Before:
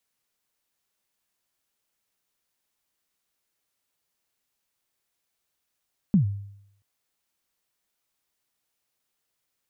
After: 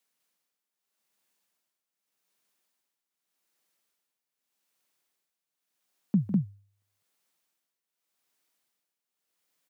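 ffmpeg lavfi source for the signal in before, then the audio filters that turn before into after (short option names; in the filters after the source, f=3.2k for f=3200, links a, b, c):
-f lavfi -i "aevalsrc='0.224*pow(10,-3*t/0.74)*sin(2*PI*(220*0.112/log(100/220)*(exp(log(100/220)*min(t,0.112)/0.112)-1)+100*max(t-0.112,0)))':d=0.68:s=44100"
-af "highpass=f=150:w=0.5412,highpass=f=150:w=1.3066,tremolo=f=0.84:d=0.81,aecho=1:1:151.6|201.2:0.251|0.891"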